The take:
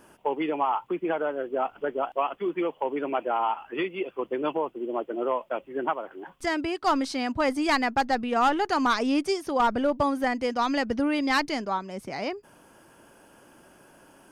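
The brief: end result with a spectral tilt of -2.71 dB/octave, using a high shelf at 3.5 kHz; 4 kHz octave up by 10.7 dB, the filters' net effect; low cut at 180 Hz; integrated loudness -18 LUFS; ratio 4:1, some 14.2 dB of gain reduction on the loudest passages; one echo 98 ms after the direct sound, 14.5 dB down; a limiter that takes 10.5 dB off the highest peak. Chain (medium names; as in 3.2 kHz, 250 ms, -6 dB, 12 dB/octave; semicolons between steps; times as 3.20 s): high-pass 180 Hz; treble shelf 3.5 kHz +8 dB; peaking EQ 4 kHz +8 dB; compression 4:1, threshold -33 dBFS; peak limiter -29.5 dBFS; delay 98 ms -14.5 dB; trim +21 dB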